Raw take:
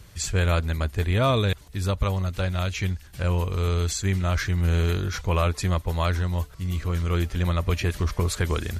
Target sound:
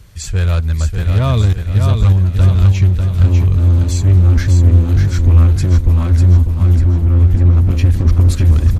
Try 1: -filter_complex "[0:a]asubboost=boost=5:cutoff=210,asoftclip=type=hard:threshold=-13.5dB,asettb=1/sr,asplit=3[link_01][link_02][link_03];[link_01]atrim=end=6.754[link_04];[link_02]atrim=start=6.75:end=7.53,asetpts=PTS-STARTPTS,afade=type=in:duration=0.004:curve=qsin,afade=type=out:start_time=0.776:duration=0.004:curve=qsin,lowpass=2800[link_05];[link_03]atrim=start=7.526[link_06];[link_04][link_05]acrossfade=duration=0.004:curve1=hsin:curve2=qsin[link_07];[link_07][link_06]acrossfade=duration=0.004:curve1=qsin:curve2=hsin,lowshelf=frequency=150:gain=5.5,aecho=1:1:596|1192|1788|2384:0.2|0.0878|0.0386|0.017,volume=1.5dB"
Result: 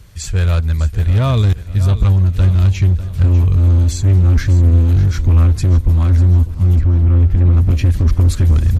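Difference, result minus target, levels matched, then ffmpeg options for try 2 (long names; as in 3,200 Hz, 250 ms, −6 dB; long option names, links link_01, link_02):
echo-to-direct −9 dB
-filter_complex "[0:a]asubboost=boost=5:cutoff=210,asoftclip=type=hard:threshold=-13.5dB,asettb=1/sr,asplit=3[link_01][link_02][link_03];[link_01]atrim=end=6.754[link_04];[link_02]atrim=start=6.75:end=7.53,asetpts=PTS-STARTPTS,afade=type=in:duration=0.004:curve=qsin,afade=type=out:start_time=0.776:duration=0.004:curve=qsin,lowpass=2800[link_05];[link_03]atrim=start=7.526[link_06];[link_04][link_05]acrossfade=duration=0.004:curve1=hsin:curve2=qsin[link_07];[link_07][link_06]acrossfade=duration=0.004:curve1=qsin:curve2=hsin,lowshelf=frequency=150:gain=5.5,aecho=1:1:596|1192|1788|2384|2980:0.562|0.247|0.109|0.0479|0.0211,volume=1.5dB"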